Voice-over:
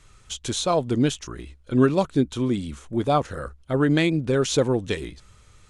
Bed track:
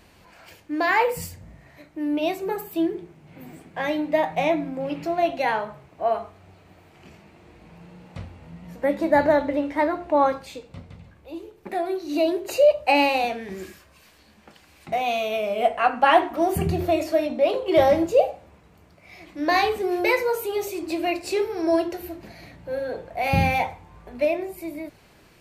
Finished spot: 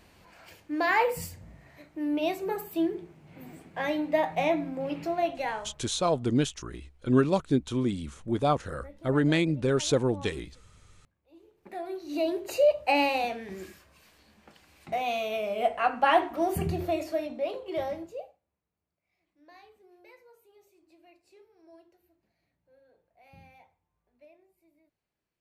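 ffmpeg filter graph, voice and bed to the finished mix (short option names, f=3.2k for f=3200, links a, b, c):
-filter_complex "[0:a]adelay=5350,volume=-4dB[a];[1:a]volume=17dB,afade=t=out:st=5.05:d=0.94:silence=0.0749894,afade=t=in:st=11.24:d=1.14:silence=0.0891251,afade=t=out:st=16.57:d=1.83:silence=0.0375837[b];[a][b]amix=inputs=2:normalize=0"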